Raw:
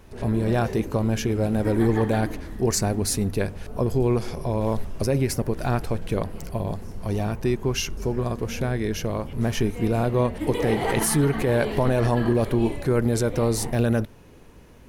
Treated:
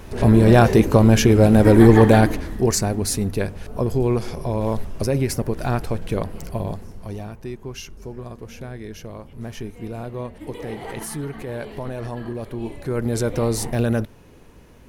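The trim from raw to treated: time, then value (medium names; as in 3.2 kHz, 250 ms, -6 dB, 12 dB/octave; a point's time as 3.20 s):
2.12 s +10 dB
2.86 s +1.5 dB
6.64 s +1.5 dB
7.35 s -9 dB
12.51 s -9 dB
13.23 s +1 dB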